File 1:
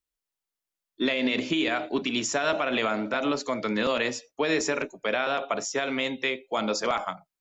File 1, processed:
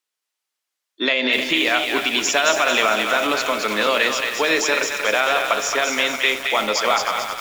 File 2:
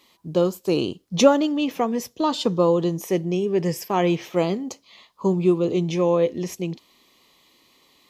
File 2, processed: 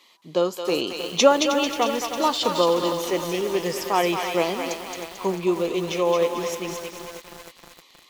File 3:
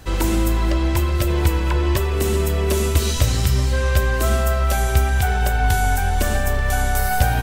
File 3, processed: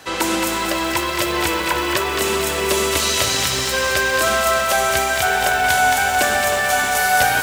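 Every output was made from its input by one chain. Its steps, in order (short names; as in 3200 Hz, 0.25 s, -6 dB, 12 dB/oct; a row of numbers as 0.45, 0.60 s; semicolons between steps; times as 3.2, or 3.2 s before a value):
weighting filter A; thinning echo 0.221 s, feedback 44%, high-pass 1100 Hz, level -3.5 dB; lo-fi delay 0.313 s, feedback 80%, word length 6-bit, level -10 dB; normalise peaks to -3 dBFS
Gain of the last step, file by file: +8.0, +2.0, +6.0 dB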